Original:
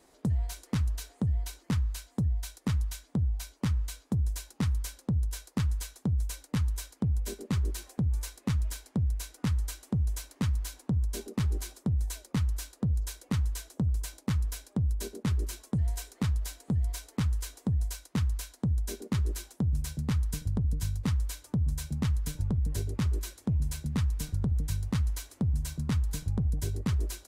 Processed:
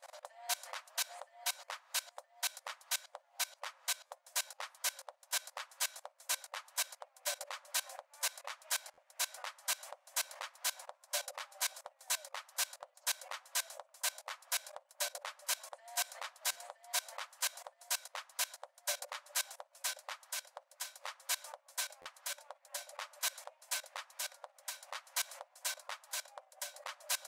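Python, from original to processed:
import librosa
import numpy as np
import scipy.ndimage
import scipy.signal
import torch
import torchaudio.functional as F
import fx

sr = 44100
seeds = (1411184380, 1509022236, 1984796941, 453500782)

y = fx.high_shelf(x, sr, hz=4300.0, db=-6.0)
y = fx.level_steps(y, sr, step_db=21)
y = fx.brickwall_highpass(y, sr, low_hz=520.0)
y = fx.buffer_glitch(y, sr, at_s=(4.06, 8.93, 16.51, 22.01), block=512, repeats=3)
y = y * 10.0 ** (15.0 / 20.0)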